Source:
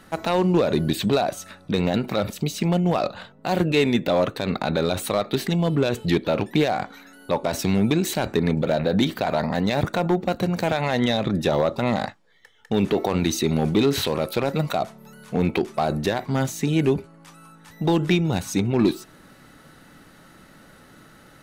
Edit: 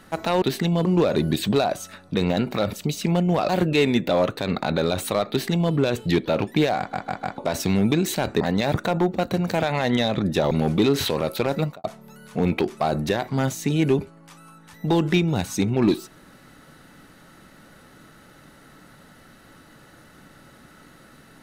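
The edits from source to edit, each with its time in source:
3.06–3.48 s: delete
5.29–5.72 s: copy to 0.42 s
6.77 s: stutter in place 0.15 s, 4 plays
8.40–9.50 s: delete
11.60–13.48 s: delete
14.56–14.81 s: studio fade out

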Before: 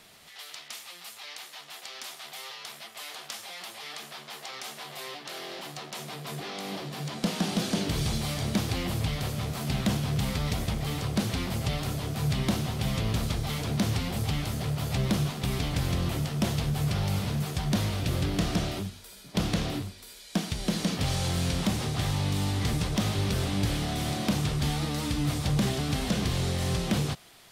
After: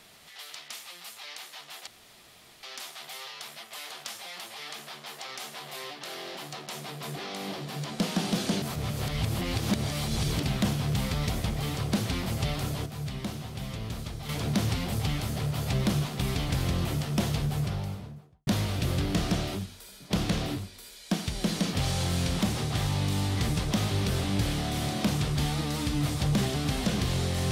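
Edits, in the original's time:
1.87 s: insert room tone 0.76 s
7.86–9.67 s: reverse
12.10–13.53 s: gain -7.5 dB
16.54–17.71 s: studio fade out

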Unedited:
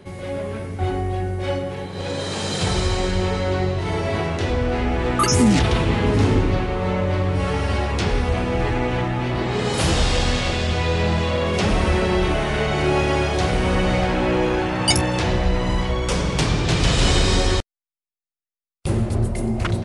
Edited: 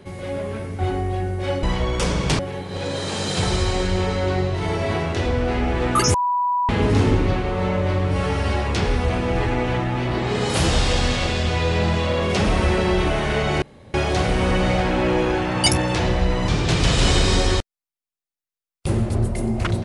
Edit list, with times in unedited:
5.38–5.93 s: bleep 982 Hz -17.5 dBFS
12.86–13.18 s: room tone
15.72–16.48 s: move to 1.63 s

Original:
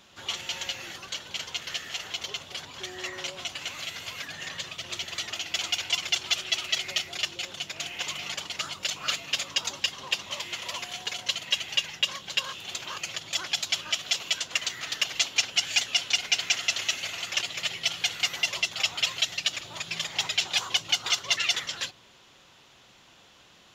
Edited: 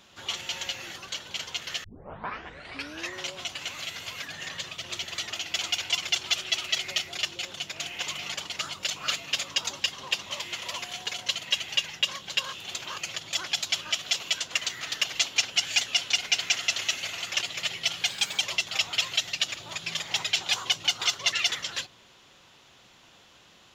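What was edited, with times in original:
1.84 s: tape start 1.29 s
18.08–18.45 s: speed 114%

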